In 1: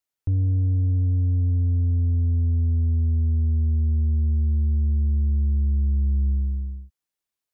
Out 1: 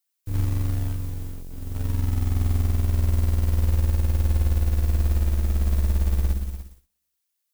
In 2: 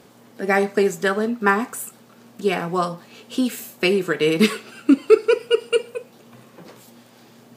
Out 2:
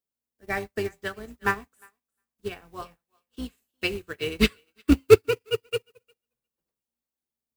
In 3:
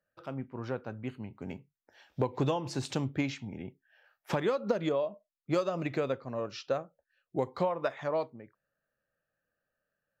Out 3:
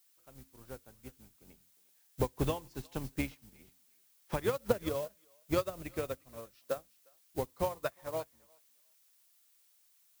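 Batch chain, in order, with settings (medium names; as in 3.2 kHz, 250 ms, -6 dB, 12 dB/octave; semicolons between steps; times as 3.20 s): octave divider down 2 oct, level -4 dB; de-hum 89.34 Hz, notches 3; dynamic bell 2.9 kHz, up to +5 dB, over -39 dBFS, Q 0.76; in parallel at -4 dB: companded quantiser 4-bit; on the sum: added noise blue -39 dBFS; on a send: thinning echo 356 ms, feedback 25%, high-pass 720 Hz, level -10.5 dB; on the sum: upward expansion 2.5:1, over -36 dBFS; trim -4 dB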